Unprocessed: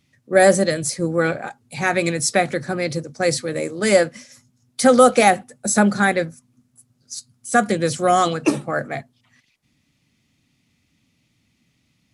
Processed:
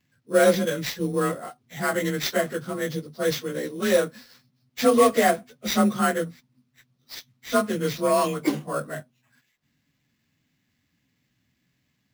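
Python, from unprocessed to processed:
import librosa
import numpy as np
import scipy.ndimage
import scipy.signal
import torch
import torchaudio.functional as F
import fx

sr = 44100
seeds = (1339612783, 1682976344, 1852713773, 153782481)

y = fx.partial_stretch(x, sr, pct=92)
y = fx.sample_hold(y, sr, seeds[0], rate_hz=9600.0, jitter_pct=0)
y = y * librosa.db_to_amplitude(-3.5)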